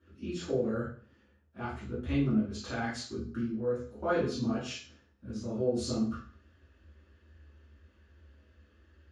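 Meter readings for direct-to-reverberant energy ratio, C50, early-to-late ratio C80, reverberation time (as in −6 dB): −11.5 dB, 3.5 dB, 8.5 dB, 0.45 s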